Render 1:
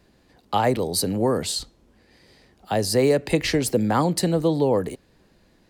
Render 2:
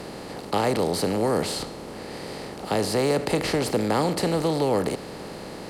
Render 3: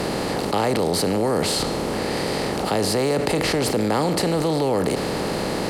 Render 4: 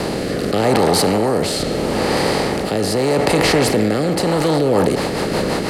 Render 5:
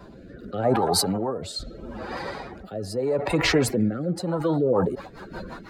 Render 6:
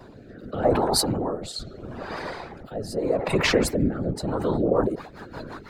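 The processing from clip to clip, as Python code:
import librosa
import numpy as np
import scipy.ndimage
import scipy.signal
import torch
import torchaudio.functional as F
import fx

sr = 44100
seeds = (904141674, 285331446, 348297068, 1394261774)

y1 = fx.bin_compress(x, sr, power=0.4)
y1 = fx.high_shelf(y1, sr, hz=7800.0, db=-7.0)
y1 = y1 * 10.0 ** (-7.0 / 20.0)
y2 = fx.env_flatten(y1, sr, amount_pct=70)
y3 = fx.echo_wet_bandpass(y2, sr, ms=120, feedback_pct=74, hz=1200.0, wet_db=-5.5)
y3 = fx.rotary_switch(y3, sr, hz=0.8, then_hz=6.0, switch_at_s=4.21)
y3 = y3 * 10.0 ** (6.5 / 20.0)
y4 = fx.bin_expand(y3, sr, power=3.0)
y5 = fx.whisperise(y4, sr, seeds[0])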